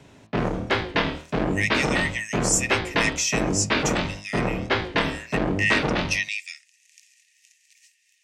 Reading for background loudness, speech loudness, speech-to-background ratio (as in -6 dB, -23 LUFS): -25.5 LUFS, -26.5 LUFS, -1.0 dB